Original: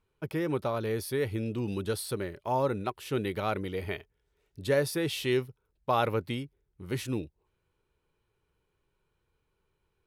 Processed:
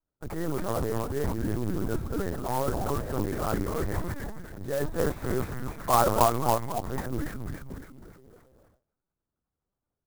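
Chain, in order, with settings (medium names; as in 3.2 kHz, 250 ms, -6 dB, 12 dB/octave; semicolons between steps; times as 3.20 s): compression 6:1, threshold -36 dBFS, peak gain reduction 14 dB; dynamic bell 1.3 kHz, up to +4 dB, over -55 dBFS, Q 1.2; frequency-shifting echo 277 ms, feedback 47%, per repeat -130 Hz, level -4.5 dB; transient shaper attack -10 dB, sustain +11 dB; 4.85–7.10 s: high-order bell 800 Hz +8.5 dB; LPC vocoder at 8 kHz pitch kept; Butterworth band-stop 3 kHz, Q 0.85; gate with hold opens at -59 dBFS; sampling jitter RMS 0.051 ms; trim +8.5 dB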